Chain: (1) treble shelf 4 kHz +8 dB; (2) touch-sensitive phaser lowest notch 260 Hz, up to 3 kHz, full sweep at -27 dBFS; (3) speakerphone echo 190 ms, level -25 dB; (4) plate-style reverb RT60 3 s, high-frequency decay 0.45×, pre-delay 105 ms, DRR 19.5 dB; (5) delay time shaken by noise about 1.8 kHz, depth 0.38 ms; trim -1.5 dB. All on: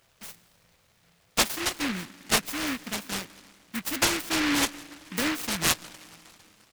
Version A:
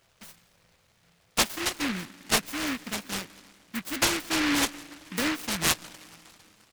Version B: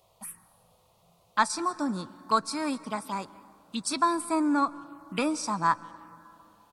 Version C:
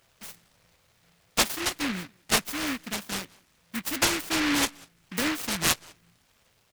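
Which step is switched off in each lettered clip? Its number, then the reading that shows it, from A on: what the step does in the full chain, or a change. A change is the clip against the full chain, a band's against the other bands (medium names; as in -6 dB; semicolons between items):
1, momentary loudness spread change -7 LU; 5, 1 kHz band +12.0 dB; 4, momentary loudness spread change -7 LU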